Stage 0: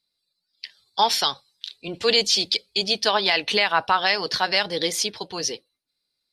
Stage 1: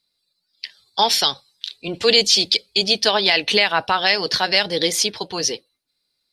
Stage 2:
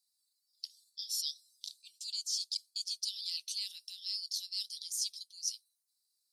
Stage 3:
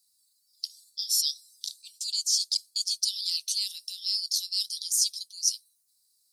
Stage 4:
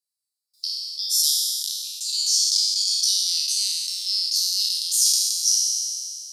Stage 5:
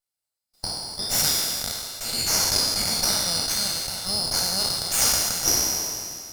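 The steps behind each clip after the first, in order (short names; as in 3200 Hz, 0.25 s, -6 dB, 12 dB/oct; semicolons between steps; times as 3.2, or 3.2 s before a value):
dynamic EQ 1100 Hz, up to -6 dB, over -34 dBFS, Q 1.3; gain +5 dB
inverse Chebyshev high-pass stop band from 1400 Hz, stop band 70 dB; reverse; compressor 5:1, threshold -36 dBFS, peak gain reduction 15 dB; reverse; gain +1.5 dB
tone controls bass +9 dB, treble +10 dB; gain +2.5 dB
spectral trails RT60 2.37 s; gate with hold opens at -53 dBFS; gain +1 dB
minimum comb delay 1.4 ms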